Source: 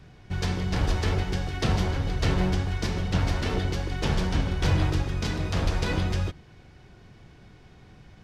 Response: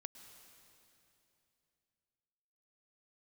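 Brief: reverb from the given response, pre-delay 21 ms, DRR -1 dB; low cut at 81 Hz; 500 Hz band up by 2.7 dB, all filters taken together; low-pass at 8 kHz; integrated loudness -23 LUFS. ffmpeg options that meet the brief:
-filter_complex "[0:a]highpass=81,lowpass=8000,equalizer=f=500:t=o:g=3.5,asplit=2[s0][s1];[1:a]atrim=start_sample=2205,adelay=21[s2];[s1][s2]afir=irnorm=-1:irlink=0,volume=2[s3];[s0][s3]amix=inputs=2:normalize=0,volume=1.12"

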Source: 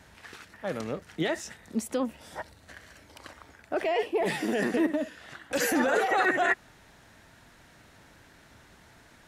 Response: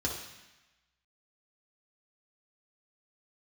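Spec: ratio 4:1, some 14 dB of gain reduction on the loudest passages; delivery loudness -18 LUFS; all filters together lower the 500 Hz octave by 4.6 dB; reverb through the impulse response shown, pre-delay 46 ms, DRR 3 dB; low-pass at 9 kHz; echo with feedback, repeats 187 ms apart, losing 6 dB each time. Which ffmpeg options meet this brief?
-filter_complex "[0:a]lowpass=9000,equalizer=f=500:t=o:g=-6,acompressor=threshold=0.0112:ratio=4,aecho=1:1:187|374|561|748|935|1122:0.501|0.251|0.125|0.0626|0.0313|0.0157,asplit=2[s0][s1];[1:a]atrim=start_sample=2205,adelay=46[s2];[s1][s2]afir=irnorm=-1:irlink=0,volume=0.376[s3];[s0][s3]amix=inputs=2:normalize=0,volume=11.2"

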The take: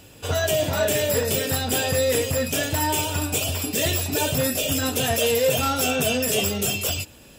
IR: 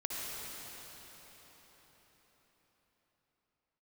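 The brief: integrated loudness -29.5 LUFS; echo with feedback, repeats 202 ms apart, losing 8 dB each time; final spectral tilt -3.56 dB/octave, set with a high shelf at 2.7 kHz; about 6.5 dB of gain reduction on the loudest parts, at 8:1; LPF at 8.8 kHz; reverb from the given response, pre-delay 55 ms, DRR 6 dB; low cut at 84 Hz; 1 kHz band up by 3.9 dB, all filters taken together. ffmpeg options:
-filter_complex "[0:a]highpass=84,lowpass=8800,equalizer=f=1000:t=o:g=4.5,highshelf=f=2700:g=5,acompressor=threshold=0.0794:ratio=8,aecho=1:1:202|404|606|808|1010:0.398|0.159|0.0637|0.0255|0.0102,asplit=2[s0][s1];[1:a]atrim=start_sample=2205,adelay=55[s2];[s1][s2]afir=irnorm=-1:irlink=0,volume=0.316[s3];[s0][s3]amix=inputs=2:normalize=0,volume=0.473"

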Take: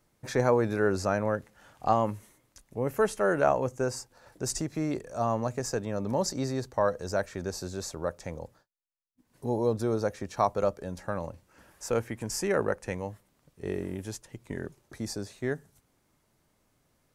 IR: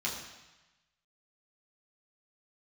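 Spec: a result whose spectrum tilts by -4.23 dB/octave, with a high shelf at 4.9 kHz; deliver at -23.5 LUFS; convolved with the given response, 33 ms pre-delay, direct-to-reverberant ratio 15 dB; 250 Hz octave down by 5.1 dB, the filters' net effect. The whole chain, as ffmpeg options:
-filter_complex "[0:a]equalizer=f=250:t=o:g=-7,highshelf=f=4900:g=4.5,asplit=2[s0][s1];[1:a]atrim=start_sample=2205,adelay=33[s2];[s1][s2]afir=irnorm=-1:irlink=0,volume=0.1[s3];[s0][s3]amix=inputs=2:normalize=0,volume=2.51"

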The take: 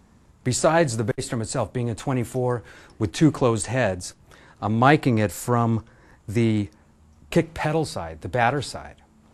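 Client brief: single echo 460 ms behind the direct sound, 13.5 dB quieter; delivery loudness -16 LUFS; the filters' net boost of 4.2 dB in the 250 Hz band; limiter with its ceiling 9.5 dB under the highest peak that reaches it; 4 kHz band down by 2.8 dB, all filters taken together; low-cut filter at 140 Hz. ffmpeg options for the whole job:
-af "highpass=140,equalizer=f=250:t=o:g=6,equalizer=f=4000:t=o:g=-3.5,alimiter=limit=0.316:level=0:latency=1,aecho=1:1:460:0.211,volume=2.37"

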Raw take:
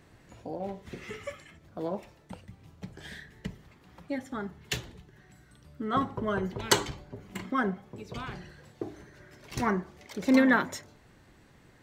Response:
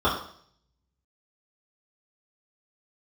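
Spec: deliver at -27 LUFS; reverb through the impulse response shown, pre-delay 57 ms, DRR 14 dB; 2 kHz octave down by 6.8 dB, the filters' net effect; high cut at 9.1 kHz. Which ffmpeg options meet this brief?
-filter_complex "[0:a]lowpass=9100,equalizer=f=2000:t=o:g=-9,asplit=2[s0][s1];[1:a]atrim=start_sample=2205,adelay=57[s2];[s1][s2]afir=irnorm=-1:irlink=0,volume=0.0282[s3];[s0][s3]amix=inputs=2:normalize=0,volume=1.88"

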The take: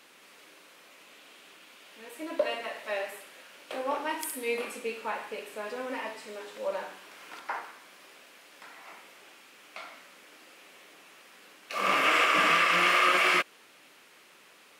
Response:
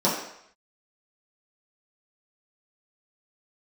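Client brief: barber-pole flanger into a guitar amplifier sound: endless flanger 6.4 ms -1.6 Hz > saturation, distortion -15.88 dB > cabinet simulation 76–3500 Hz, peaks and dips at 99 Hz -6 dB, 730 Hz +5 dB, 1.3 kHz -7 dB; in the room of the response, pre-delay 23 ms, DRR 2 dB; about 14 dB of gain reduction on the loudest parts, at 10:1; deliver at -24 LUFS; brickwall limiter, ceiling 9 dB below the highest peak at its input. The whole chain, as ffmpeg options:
-filter_complex "[0:a]acompressor=threshold=0.02:ratio=10,alimiter=level_in=2.37:limit=0.0631:level=0:latency=1,volume=0.422,asplit=2[s0][s1];[1:a]atrim=start_sample=2205,adelay=23[s2];[s1][s2]afir=irnorm=-1:irlink=0,volume=0.133[s3];[s0][s3]amix=inputs=2:normalize=0,asplit=2[s4][s5];[s5]adelay=6.4,afreqshift=-1.6[s6];[s4][s6]amix=inputs=2:normalize=1,asoftclip=threshold=0.0158,highpass=76,equalizer=f=99:t=q:w=4:g=-6,equalizer=f=730:t=q:w=4:g=5,equalizer=f=1300:t=q:w=4:g=-7,lowpass=f=3500:w=0.5412,lowpass=f=3500:w=1.3066,volume=12.6"

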